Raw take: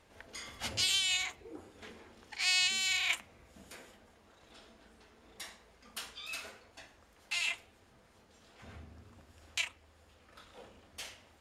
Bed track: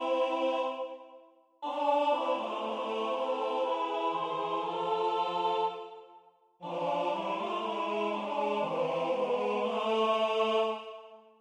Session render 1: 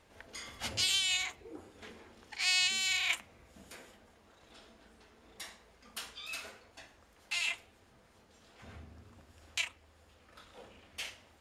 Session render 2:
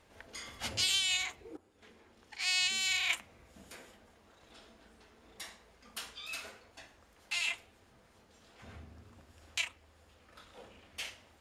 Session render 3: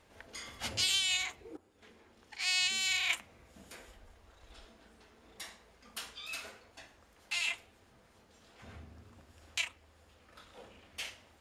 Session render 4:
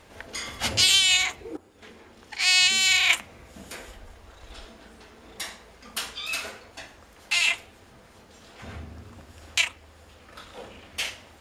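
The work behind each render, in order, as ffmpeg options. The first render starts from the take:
ffmpeg -i in.wav -filter_complex "[0:a]asettb=1/sr,asplit=3[link_01][link_02][link_03];[link_01]atrim=end=10.704[link_04];[link_02]atrim=start=10.7:end=11.1,asetpts=PTS-STARTPTS,afade=type=in:duration=0.004:curve=qsin,afade=type=out:start_time=0.396:duration=0.004:curve=qsin,equalizer=frequency=2500:width=1.5:gain=7[link_05];[link_03]atrim=start=11.096[link_06];[link_04][link_05]acrossfade=duration=0.004:curve1=hsin:curve2=qsin[link_07];[link_07][link_06]acrossfade=duration=0.004:curve1=qsin:curve2=hsin" out.wav
ffmpeg -i in.wav -filter_complex "[0:a]asplit=2[link_01][link_02];[link_01]atrim=end=1.57,asetpts=PTS-STARTPTS,afade=type=out:start_time=1.566:duration=0.004:curve=hsin:silence=0.177828[link_03];[link_02]atrim=start=1.57,asetpts=PTS-STARTPTS,afade=type=in:duration=1.27:silence=0.177828[link_04];[link_03][link_04]concat=n=2:v=0:a=1" out.wav
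ffmpeg -i in.wav -filter_complex "[0:a]asplit=3[link_01][link_02][link_03];[link_01]afade=type=out:start_time=3.78:duration=0.02[link_04];[link_02]asubboost=boost=10.5:cutoff=53,afade=type=in:start_time=3.78:duration=0.02,afade=type=out:start_time=4.65:duration=0.02[link_05];[link_03]afade=type=in:start_time=4.65:duration=0.02[link_06];[link_04][link_05][link_06]amix=inputs=3:normalize=0" out.wav
ffmpeg -i in.wav -af "volume=11.5dB" out.wav

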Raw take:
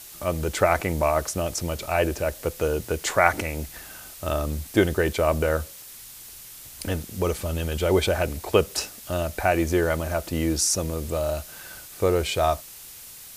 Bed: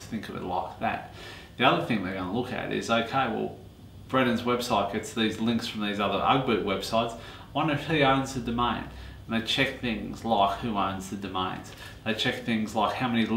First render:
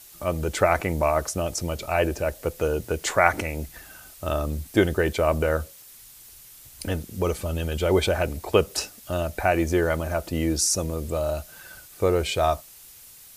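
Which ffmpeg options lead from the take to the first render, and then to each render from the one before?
ffmpeg -i in.wav -af "afftdn=noise_reduction=6:noise_floor=-43" out.wav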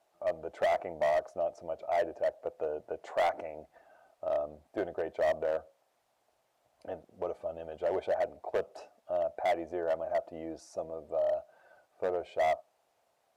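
ffmpeg -i in.wav -af "bandpass=frequency=670:width_type=q:width=4.2:csg=0,asoftclip=type=hard:threshold=-24dB" out.wav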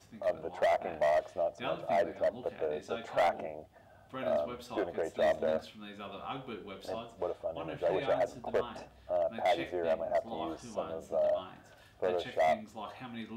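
ffmpeg -i in.wav -i bed.wav -filter_complex "[1:a]volume=-17.5dB[link_01];[0:a][link_01]amix=inputs=2:normalize=0" out.wav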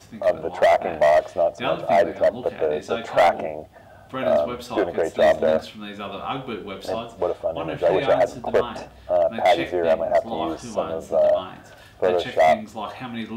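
ffmpeg -i in.wav -af "volume=12dB" out.wav

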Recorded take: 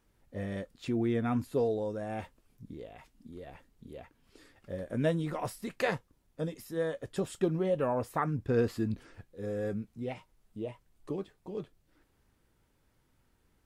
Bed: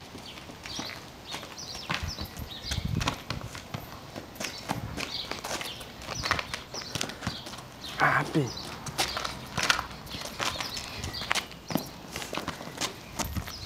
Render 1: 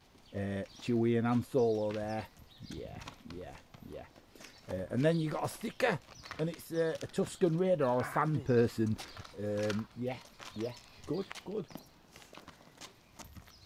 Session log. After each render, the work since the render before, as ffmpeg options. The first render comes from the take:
ffmpeg -i in.wav -i bed.wav -filter_complex "[1:a]volume=-18.5dB[link_01];[0:a][link_01]amix=inputs=2:normalize=0" out.wav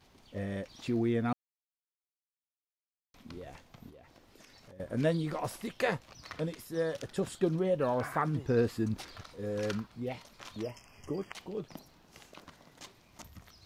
ffmpeg -i in.wav -filter_complex "[0:a]asettb=1/sr,asplit=3[link_01][link_02][link_03];[link_01]atrim=end=3.894[link_04];[link_02]atrim=start=3.89:end=4.8,asetpts=PTS-STARTPTS,afade=type=in:duration=0.004:curve=qsin,afade=type=out:start_time=0.906:duration=0.004:curve=qsin,acompressor=threshold=-52dB:ratio=5:attack=3.2:release=140:knee=1:detection=peak[link_05];[link_03]atrim=start=4.796[link_06];[link_04][link_05]acrossfade=duration=0.004:curve1=hsin:curve2=qsin[link_07];[link_07][link_06]acrossfade=duration=0.004:curve1=qsin:curve2=hsin,asettb=1/sr,asplit=3[link_08][link_09][link_10];[link_08]atrim=end=10.634[link_11];[link_09]atrim=start=10.63:end=11.33,asetpts=PTS-STARTPTS,afade=type=in:duration=0.004:curve=qsin,afade=type=out:start_time=0.696:duration=0.004:curve=qsin,asuperstop=centerf=3900:order=12:qfactor=2.6[link_12];[link_10]atrim=start=11.326[link_13];[link_11][link_12]acrossfade=duration=0.004:curve1=hsin:curve2=qsin[link_14];[link_14][link_13]acrossfade=duration=0.004:curve1=qsin:curve2=hsin,asplit=3[link_15][link_16][link_17];[link_15]atrim=end=1.33,asetpts=PTS-STARTPTS,afade=type=out:start_time=1.326:duration=0.004:curve=hsin[link_18];[link_16]atrim=start=1.33:end=3.14,asetpts=PTS-STARTPTS,volume=0[link_19];[link_17]atrim=start=3.14,asetpts=PTS-STARTPTS,afade=type=in:duration=0.004:curve=hsin[link_20];[link_18][link_19][link_20]concat=n=3:v=0:a=1" out.wav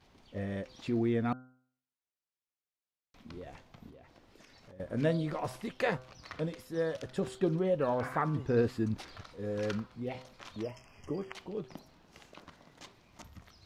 ffmpeg -i in.wav -af "highshelf=frequency=7600:gain=-11,bandreject=frequency=127.8:width_type=h:width=4,bandreject=frequency=255.6:width_type=h:width=4,bandreject=frequency=383.4:width_type=h:width=4,bandreject=frequency=511.2:width_type=h:width=4,bandreject=frequency=639:width_type=h:width=4,bandreject=frequency=766.8:width_type=h:width=4,bandreject=frequency=894.6:width_type=h:width=4,bandreject=frequency=1022.4:width_type=h:width=4,bandreject=frequency=1150.2:width_type=h:width=4,bandreject=frequency=1278:width_type=h:width=4,bandreject=frequency=1405.8:width_type=h:width=4,bandreject=frequency=1533.6:width_type=h:width=4" out.wav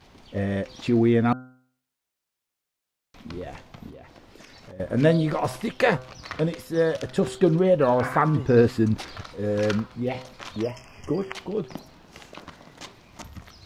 ffmpeg -i in.wav -af "volume=10.5dB" out.wav

